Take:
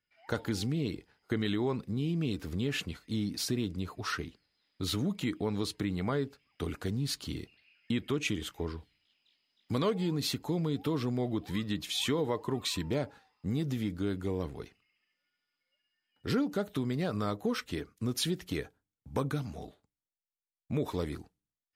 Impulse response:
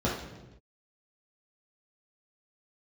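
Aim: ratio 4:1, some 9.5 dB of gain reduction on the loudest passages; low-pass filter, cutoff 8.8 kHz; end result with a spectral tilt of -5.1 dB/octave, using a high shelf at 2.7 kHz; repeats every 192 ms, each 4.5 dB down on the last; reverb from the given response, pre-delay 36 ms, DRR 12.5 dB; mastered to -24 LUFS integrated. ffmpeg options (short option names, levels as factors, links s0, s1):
-filter_complex "[0:a]lowpass=8800,highshelf=f=2700:g=5,acompressor=threshold=0.0141:ratio=4,aecho=1:1:192|384|576|768|960|1152|1344|1536|1728:0.596|0.357|0.214|0.129|0.0772|0.0463|0.0278|0.0167|0.01,asplit=2[s0][s1];[1:a]atrim=start_sample=2205,adelay=36[s2];[s1][s2]afir=irnorm=-1:irlink=0,volume=0.0668[s3];[s0][s3]amix=inputs=2:normalize=0,volume=5.31"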